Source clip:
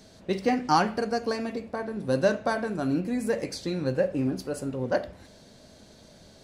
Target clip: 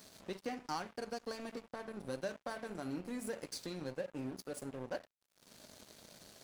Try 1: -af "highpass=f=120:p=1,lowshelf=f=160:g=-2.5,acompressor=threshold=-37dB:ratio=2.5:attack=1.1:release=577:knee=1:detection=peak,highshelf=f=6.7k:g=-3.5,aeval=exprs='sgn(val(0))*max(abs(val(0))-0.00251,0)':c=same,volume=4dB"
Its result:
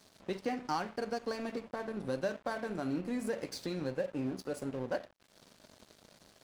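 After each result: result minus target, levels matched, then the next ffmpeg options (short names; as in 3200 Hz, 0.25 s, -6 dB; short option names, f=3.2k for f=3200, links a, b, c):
8000 Hz band -6.5 dB; compressor: peak gain reduction -5 dB
-af "highpass=f=120:p=1,lowshelf=f=160:g=-2.5,acompressor=threshold=-37dB:ratio=2.5:attack=1.1:release=577:knee=1:detection=peak,highshelf=f=6.7k:g=8.5,aeval=exprs='sgn(val(0))*max(abs(val(0))-0.00251,0)':c=same,volume=4dB"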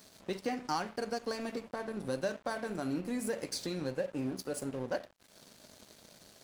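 compressor: peak gain reduction -5 dB
-af "highpass=f=120:p=1,lowshelf=f=160:g=-2.5,acompressor=threshold=-45.5dB:ratio=2.5:attack=1.1:release=577:knee=1:detection=peak,highshelf=f=6.7k:g=8.5,aeval=exprs='sgn(val(0))*max(abs(val(0))-0.00251,0)':c=same,volume=4dB"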